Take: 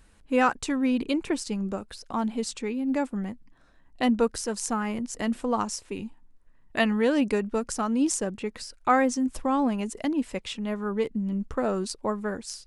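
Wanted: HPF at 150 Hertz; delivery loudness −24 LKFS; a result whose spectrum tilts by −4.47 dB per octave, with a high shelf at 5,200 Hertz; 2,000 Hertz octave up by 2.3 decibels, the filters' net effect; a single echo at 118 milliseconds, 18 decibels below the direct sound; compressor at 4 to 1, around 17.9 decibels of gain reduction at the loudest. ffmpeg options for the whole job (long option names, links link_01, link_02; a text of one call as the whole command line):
ffmpeg -i in.wav -af "highpass=150,equalizer=frequency=2000:width_type=o:gain=4,highshelf=frequency=5200:gain=-8.5,acompressor=threshold=-39dB:ratio=4,aecho=1:1:118:0.126,volume=17dB" out.wav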